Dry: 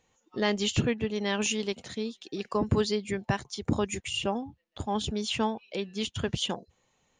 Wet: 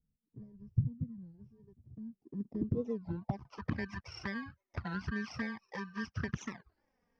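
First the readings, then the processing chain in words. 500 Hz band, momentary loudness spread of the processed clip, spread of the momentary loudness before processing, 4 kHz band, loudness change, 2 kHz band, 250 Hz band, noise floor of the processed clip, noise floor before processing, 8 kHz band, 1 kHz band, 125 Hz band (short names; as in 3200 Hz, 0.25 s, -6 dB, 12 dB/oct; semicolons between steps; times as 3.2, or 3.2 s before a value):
-14.5 dB, 18 LU, 9 LU, -22.0 dB, -9.0 dB, -7.0 dB, -8.0 dB, under -85 dBFS, -73 dBFS, under -20 dB, -13.0 dB, -4.0 dB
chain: FFT order left unsorted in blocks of 32 samples; dynamic EQ 480 Hz, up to -8 dB, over -44 dBFS, Q 0.96; compressor 5:1, threshold -28 dBFS, peak gain reduction 8 dB; low-pass sweep 130 Hz -> 1600 Hz, 1.87–3.8; envelope flanger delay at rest 4.5 ms, full sweep at -28.5 dBFS; synth low-pass 5400 Hz, resonance Q 4.5; record warp 33 1/3 rpm, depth 250 cents; gain -1 dB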